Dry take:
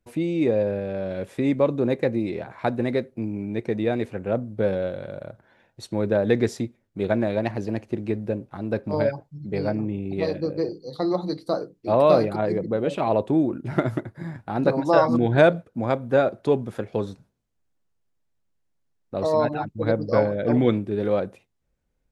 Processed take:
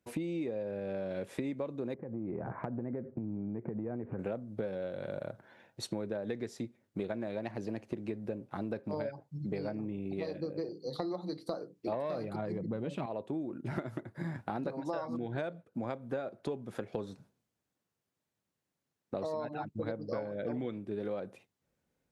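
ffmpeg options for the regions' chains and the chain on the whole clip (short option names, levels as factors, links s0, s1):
-filter_complex "[0:a]asettb=1/sr,asplit=3[s0][s1][s2];[s0]atrim=end=1.944[s3];[s1]atrim=start=1.94:end=4.19,asetpts=PTS-STARTPTS,afade=t=in:d=0.004:c=qsin,afade=t=out:st=2.246:d=0.004:c=qsin,lowpass=f=1600:w=0.5412,lowpass=f=1600:w=1.3066,lowshelf=f=280:g=11.5,acompressor=threshold=0.0355:ratio=12:attack=3.2:release=140:knee=1:detection=peak[s4];[s2]atrim=start=4.186[s5];[s3][s4]acrossfade=d=0.004:c1=hsin:c2=qsin[s6];[s6][s5]acrossfade=d=0.004:c1=qsin:c2=hsin,asettb=1/sr,asplit=3[s7][s8][s9];[s7]atrim=end=11.924[s10];[s8]atrim=start=11.92:end=13.06,asetpts=PTS-STARTPTS,afade=t=in:d=0.004:c=qsin,afade=t=out:st=1.136:d=0.004:c=qsin,asubboost=boost=9:cutoff=240,acontrast=79[s11];[s9]atrim=start=13.056[s12];[s10][s11]acrossfade=d=0.004:c1=hsin:c2=qsin[s13];[s13][s12]acrossfade=d=0.004:c1=qsin:c2=hsin,highpass=120,acompressor=threshold=0.0224:ratio=16"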